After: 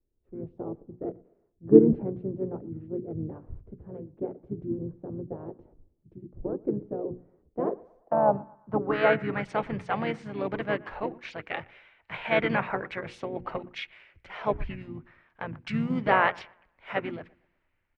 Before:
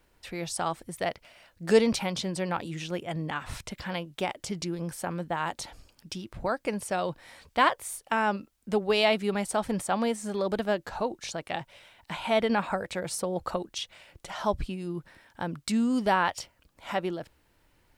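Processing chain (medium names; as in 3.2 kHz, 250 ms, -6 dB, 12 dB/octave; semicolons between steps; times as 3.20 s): hum notches 60/120/180/240/300/360/420/480 Hz; harmony voices -12 st -16 dB, -7 st -6 dB, -5 st -8 dB; bucket-brigade echo 118 ms, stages 2048, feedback 43%, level -23 dB; low-pass sweep 370 Hz -> 2.2 kHz, 7.58–9.49 s; three bands expanded up and down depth 40%; trim -4 dB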